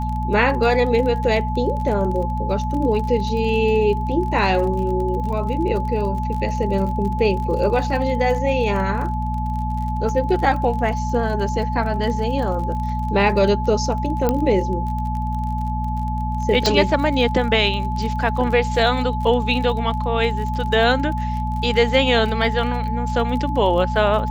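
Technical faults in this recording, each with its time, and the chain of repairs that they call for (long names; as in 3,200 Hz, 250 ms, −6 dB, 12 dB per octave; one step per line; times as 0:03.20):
surface crackle 35 per second −28 dBFS
mains hum 60 Hz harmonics 4 −24 dBFS
whistle 860 Hz −26 dBFS
0:14.29: click −6 dBFS
0:16.66: click −4 dBFS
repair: click removal
notch filter 860 Hz, Q 30
hum removal 60 Hz, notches 4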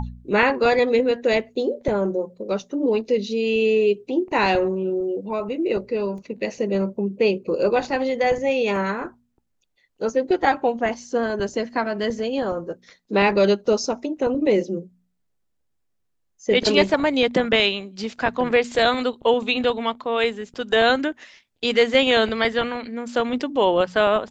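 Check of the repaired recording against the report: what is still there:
none of them is left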